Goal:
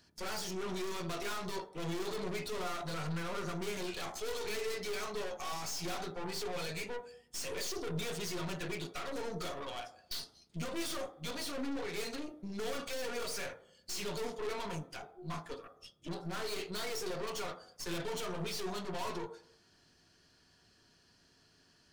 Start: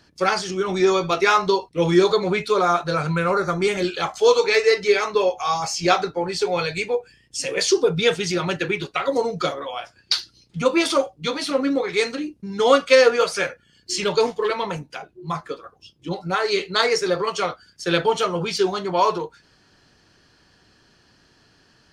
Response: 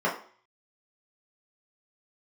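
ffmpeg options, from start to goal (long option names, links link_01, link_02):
-filter_complex "[0:a]highshelf=frequency=4800:gain=10,aeval=exprs='(tanh(35.5*val(0)+0.8)-tanh(0.8))/35.5':channel_layout=same,asplit=2[link_01][link_02];[1:a]atrim=start_sample=2205,asetrate=28665,aresample=44100[link_03];[link_02][link_03]afir=irnorm=-1:irlink=0,volume=-22.5dB[link_04];[link_01][link_04]amix=inputs=2:normalize=0,volume=-7dB"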